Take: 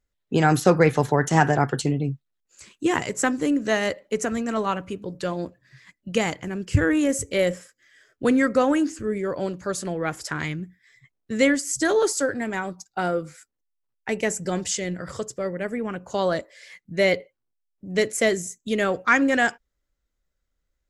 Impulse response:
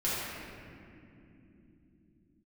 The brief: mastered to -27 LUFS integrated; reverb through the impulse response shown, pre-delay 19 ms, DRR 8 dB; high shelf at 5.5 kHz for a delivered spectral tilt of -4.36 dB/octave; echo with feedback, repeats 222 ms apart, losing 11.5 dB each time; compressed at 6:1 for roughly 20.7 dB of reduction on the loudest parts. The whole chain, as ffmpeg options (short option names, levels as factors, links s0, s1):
-filter_complex "[0:a]highshelf=f=5500:g=3.5,acompressor=threshold=0.0178:ratio=6,aecho=1:1:222|444|666:0.266|0.0718|0.0194,asplit=2[s0][s1];[1:a]atrim=start_sample=2205,adelay=19[s2];[s1][s2]afir=irnorm=-1:irlink=0,volume=0.141[s3];[s0][s3]amix=inputs=2:normalize=0,volume=3.35"